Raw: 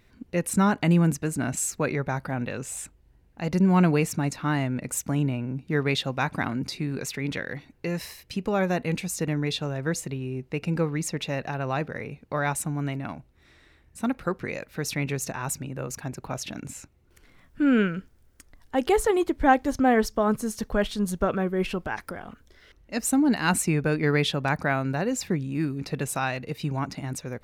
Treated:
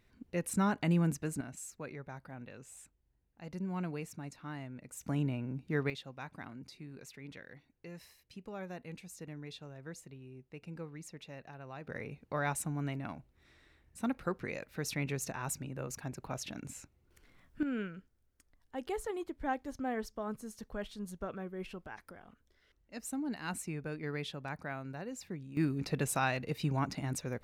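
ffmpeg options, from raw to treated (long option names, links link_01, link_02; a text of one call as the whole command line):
ffmpeg -i in.wav -af "asetnsamples=nb_out_samples=441:pad=0,asendcmd='1.41 volume volume -18dB;5.01 volume volume -8dB;5.9 volume volume -19dB;11.87 volume volume -7.5dB;17.63 volume volume -16dB;25.57 volume volume -4dB',volume=-9dB" out.wav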